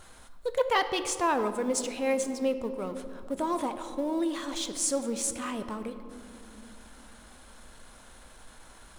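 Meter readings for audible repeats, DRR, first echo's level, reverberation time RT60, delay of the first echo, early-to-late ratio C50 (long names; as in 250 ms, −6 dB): no echo audible, 9.0 dB, no echo audible, 2.8 s, no echo audible, 10.5 dB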